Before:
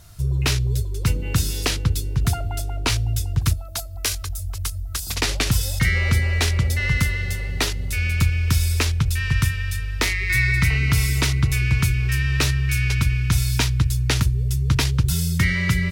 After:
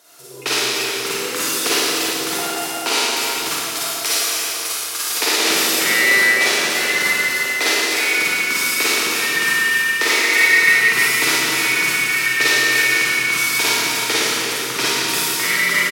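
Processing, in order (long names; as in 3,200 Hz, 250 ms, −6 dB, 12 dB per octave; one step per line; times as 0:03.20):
high-pass filter 320 Hz 24 dB per octave
far-end echo of a speakerphone 320 ms, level −7 dB
four-comb reverb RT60 3 s, DRR −10 dB
level −1 dB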